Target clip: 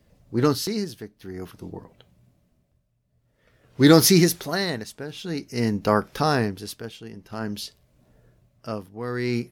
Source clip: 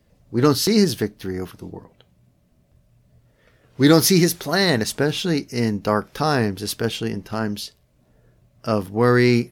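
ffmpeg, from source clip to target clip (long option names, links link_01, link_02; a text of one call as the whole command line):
ffmpeg -i in.wav -af "tremolo=f=0.5:d=0.82" out.wav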